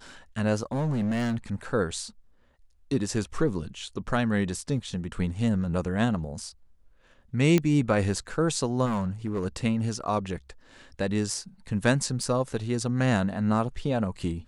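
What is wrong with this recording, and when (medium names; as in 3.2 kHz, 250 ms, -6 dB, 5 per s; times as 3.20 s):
0.72–1.37 s: clipped -23.5 dBFS
7.58 s: pop -10 dBFS
8.85–9.46 s: clipped -24 dBFS
12.23 s: dropout 2.4 ms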